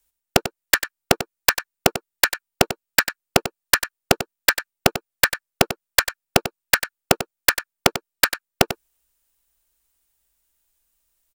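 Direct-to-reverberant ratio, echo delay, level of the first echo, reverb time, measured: no reverb audible, 95 ms, −11.5 dB, no reverb audible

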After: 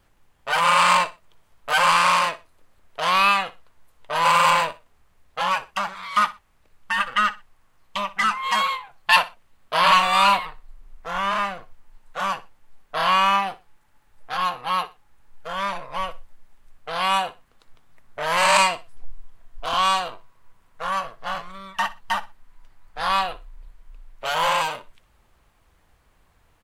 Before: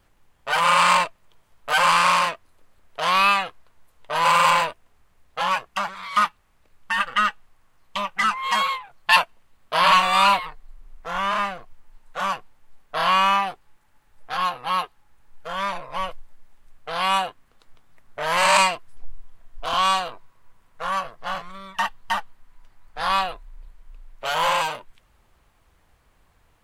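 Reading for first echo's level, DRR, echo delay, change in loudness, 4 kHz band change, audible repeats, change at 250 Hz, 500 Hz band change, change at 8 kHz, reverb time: −17.5 dB, no reverb audible, 61 ms, 0.0 dB, 0.0 dB, 2, 0.0 dB, 0.0 dB, 0.0 dB, no reverb audible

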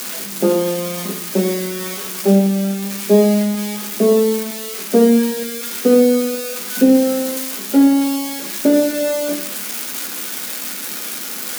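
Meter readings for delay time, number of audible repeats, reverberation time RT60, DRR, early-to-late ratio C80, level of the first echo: no echo audible, no echo audible, 0.65 s, 1.5 dB, 14.0 dB, no echo audible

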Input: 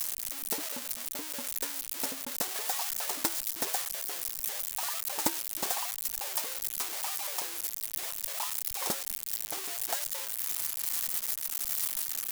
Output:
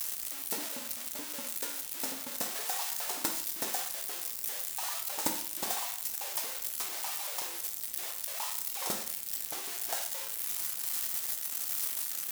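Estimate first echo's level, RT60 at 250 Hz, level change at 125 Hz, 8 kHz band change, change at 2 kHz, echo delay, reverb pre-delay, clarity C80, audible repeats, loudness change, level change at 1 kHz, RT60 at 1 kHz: no echo audible, 0.55 s, −1.5 dB, −1.5 dB, −1.5 dB, no echo audible, 7 ms, 11.5 dB, no echo audible, −1.5 dB, −1.5 dB, 0.55 s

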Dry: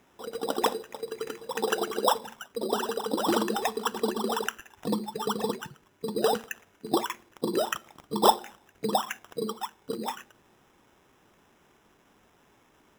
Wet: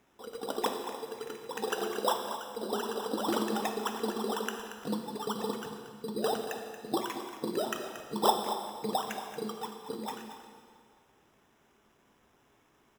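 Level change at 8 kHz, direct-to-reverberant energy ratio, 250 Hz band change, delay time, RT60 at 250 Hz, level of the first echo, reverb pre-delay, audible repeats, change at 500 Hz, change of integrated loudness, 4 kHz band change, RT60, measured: −4.5 dB, 4.0 dB, −3.5 dB, 230 ms, 2.0 s, −11.5 dB, 6 ms, 1, −4.5 dB, −4.5 dB, −4.5 dB, 2.1 s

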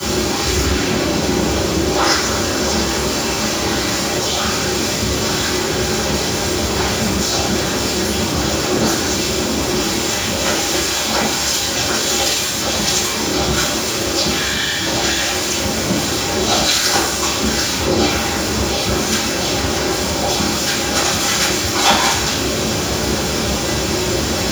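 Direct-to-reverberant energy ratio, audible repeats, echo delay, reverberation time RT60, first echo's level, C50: −15.5 dB, no echo audible, no echo audible, 0.60 s, no echo audible, 2.5 dB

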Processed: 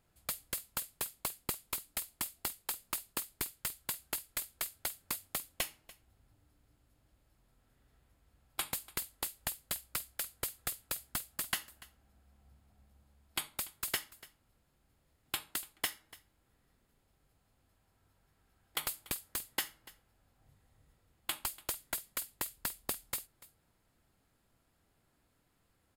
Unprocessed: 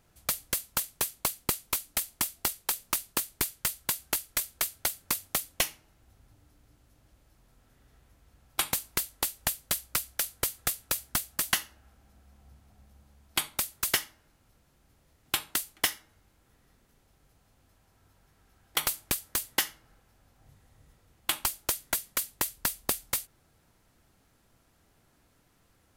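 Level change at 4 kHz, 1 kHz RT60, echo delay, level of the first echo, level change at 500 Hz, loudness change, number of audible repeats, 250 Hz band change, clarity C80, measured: −8.0 dB, no reverb audible, 290 ms, −20.0 dB, −8.0 dB, −8.0 dB, 1, −8.0 dB, no reverb audible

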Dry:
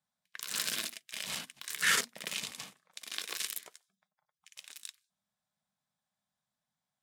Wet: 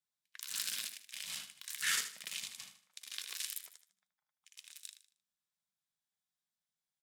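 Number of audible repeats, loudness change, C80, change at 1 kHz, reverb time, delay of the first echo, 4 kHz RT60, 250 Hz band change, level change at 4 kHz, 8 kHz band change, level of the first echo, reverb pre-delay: 3, −5.0 dB, no reverb audible, −10.0 dB, no reverb audible, 77 ms, no reverb audible, −15.0 dB, −4.5 dB, −3.0 dB, −10.5 dB, no reverb audible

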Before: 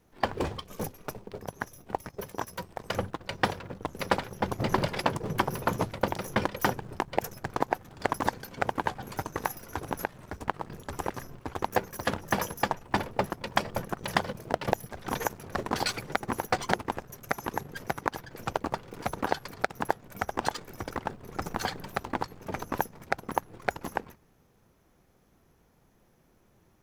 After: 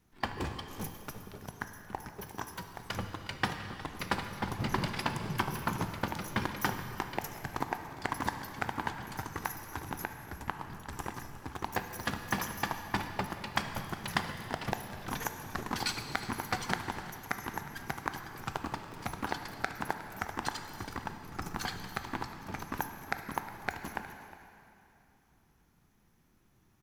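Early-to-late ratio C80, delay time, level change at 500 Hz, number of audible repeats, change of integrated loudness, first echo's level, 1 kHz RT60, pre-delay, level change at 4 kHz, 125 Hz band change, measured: 8.0 dB, 361 ms, −10.0 dB, 1, −4.5 dB, −17.0 dB, 2.9 s, 13 ms, −2.0 dB, −2.5 dB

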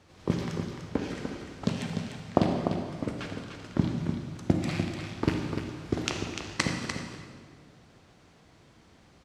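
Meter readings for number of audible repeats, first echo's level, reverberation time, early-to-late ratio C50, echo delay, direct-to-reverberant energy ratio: 1, −7.5 dB, 1.8 s, 2.5 dB, 297 ms, 2.0 dB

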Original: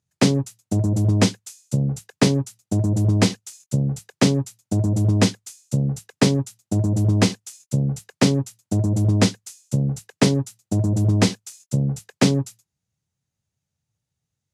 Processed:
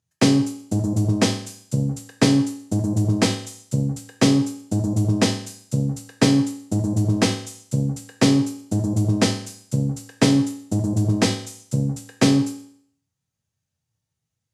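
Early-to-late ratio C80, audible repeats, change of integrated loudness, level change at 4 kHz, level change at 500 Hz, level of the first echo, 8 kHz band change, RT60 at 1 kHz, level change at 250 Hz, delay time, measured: 13.0 dB, no echo audible, −0.5 dB, +1.0 dB, −0.5 dB, no echo audible, +0.5 dB, 0.60 s, +1.5 dB, no echo audible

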